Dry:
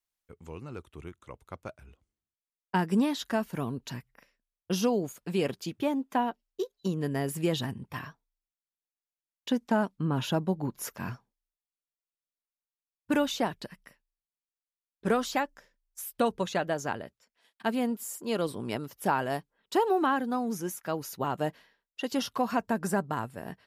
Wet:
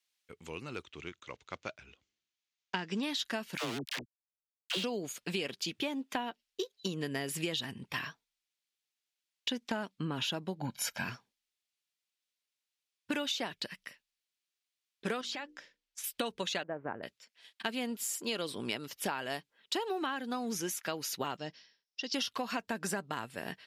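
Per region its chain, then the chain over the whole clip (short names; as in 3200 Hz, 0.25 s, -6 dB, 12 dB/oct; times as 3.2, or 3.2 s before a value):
0.83–3.03 block floating point 7-bit + Chebyshev low-pass 6900 Hz, order 4
3.57–4.84 steep low-pass 4400 Hz 72 dB/oct + sample gate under -33 dBFS + dispersion lows, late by 68 ms, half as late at 580 Hz
10.61–11.04 high shelf 10000 Hz -6 dB + comb 1.3 ms, depth 98%
15.21–16.04 notches 60/120/180/240/300/360/420/480 Hz + compressor 10:1, threshold -37 dBFS + air absorption 51 m
16.63–17.03 G.711 law mismatch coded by A + Gaussian blur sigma 6.3 samples
21.37–22.14 ladder low-pass 5700 Hz, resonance 80% + low shelf 310 Hz +9.5 dB
whole clip: weighting filter D; compressor, threshold -32 dBFS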